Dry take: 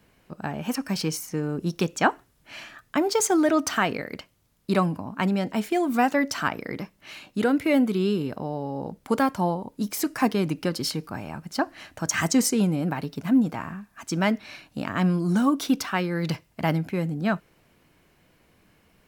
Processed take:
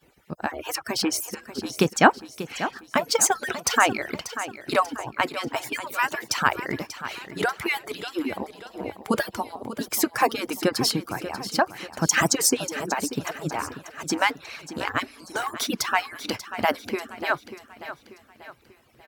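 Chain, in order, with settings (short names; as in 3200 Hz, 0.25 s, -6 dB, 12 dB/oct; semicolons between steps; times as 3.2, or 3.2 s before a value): median-filter separation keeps percussive; HPF 55 Hz; on a send: feedback echo 0.589 s, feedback 44%, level -12.5 dB; on the sum: gain +5.5 dB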